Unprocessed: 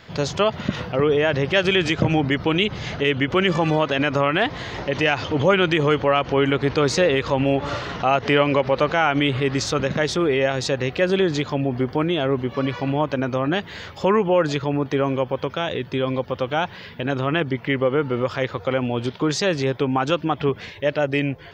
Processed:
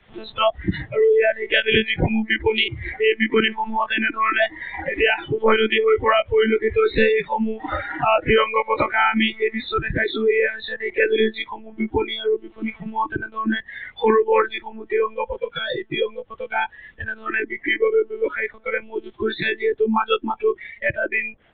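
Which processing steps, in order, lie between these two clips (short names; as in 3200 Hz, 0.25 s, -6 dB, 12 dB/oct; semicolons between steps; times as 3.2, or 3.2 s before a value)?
monotone LPC vocoder at 8 kHz 220 Hz; spectral noise reduction 25 dB; three-band squash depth 40%; gain +4 dB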